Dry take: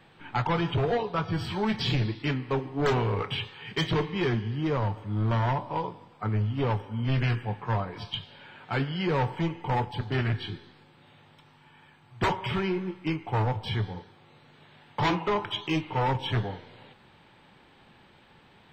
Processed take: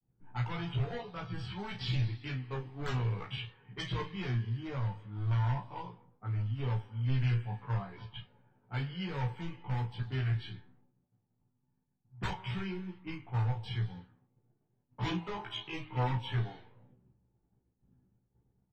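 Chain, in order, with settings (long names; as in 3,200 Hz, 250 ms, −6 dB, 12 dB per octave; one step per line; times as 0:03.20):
multi-voice chorus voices 6, 0.52 Hz, delay 16 ms, depth 1.4 ms
low-pass that shuts in the quiet parts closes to 350 Hz, open at −27 dBFS
parametric band 550 Hz −6.5 dB 2 octaves
ambience of single reflections 16 ms −7.5 dB, 35 ms −9.5 dB
downward expander −57 dBFS
level −6.5 dB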